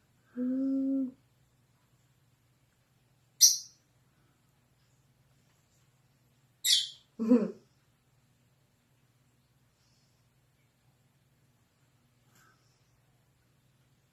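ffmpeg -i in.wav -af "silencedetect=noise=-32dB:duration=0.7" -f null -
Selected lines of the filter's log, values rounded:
silence_start: 1.05
silence_end: 3.41 | silence_duration: 2.36
silence_start: 3.59
silence_end: 6.65 | silence_duration: 3.06
silence_start: 7.50
silence_end: 14.13 | silence_duration: 6.63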